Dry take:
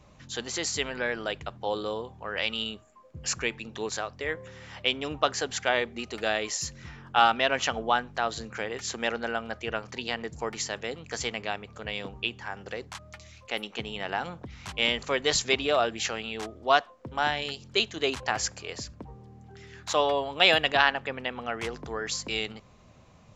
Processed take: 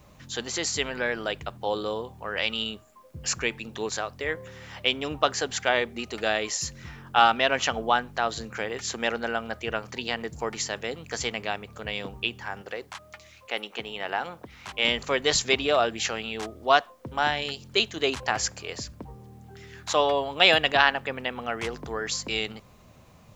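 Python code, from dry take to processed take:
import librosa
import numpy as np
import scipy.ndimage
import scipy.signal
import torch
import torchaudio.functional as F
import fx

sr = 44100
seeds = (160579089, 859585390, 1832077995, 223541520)

y = fx.bass_treble(x, sr, bass_db=-10, treble_db=-5, at=(12.62, 14.85))
y = fx.quant_dither(y, sr, seeds[0], bits=12, dither='triangular')
y = y * 10.0 ** (2.0 / 20.0)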